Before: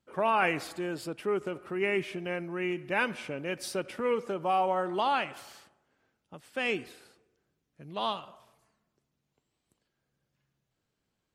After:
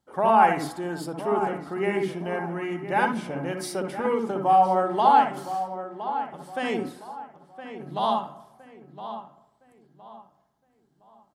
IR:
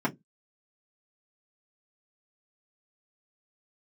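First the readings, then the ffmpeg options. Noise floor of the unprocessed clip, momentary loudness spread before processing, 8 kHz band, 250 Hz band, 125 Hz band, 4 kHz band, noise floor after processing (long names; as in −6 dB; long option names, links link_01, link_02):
−82 dBFS, 10 LU, +3.5 dB, +6.5 dB, +7.0 dB, 0.0 dB, −67 dBFS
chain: -filter_complex "[0:a]equalizer=frequency=800:width_type=o:width=0.33:gain=10,equalizer=frequency=2500:width_type=o:width=0.33:gain=-11,equalizer=frequency=10000:width_type=o:width=0.33:gain=4,asplit=2[link_01][link_02];[link_02]adelay=1014,lowpass=frequency=2600:poles=1,volume=-11dB,asplit=2[link_03][link_04];[link_04]adelay=1014,lowpass=frequency=2600:poles=1,volume=0.33,asplit=2[link_05][link_06];[link_06]adelay=1014,lowpass=frequency=2600:poles=1,volume=0.33,asplit=2[link_07][link_08];[link_08]adelay=1014,lowpass=frequency=2600:poles=1,volume=0.33[link_09];[link_01][link_03][link_05][link_07][link_09]amix=inputs=5:normalize=0,asplit=2[link_10][link_11];[1:a]atrim=start_sample=2205,adelay=60[link_12];[link_11][link_12]afir=irnorm=-1:irlink=0,volume=-14dB[link_13];[link_10][link_13]amix=inputs=2:normalize=0,volume=2dB"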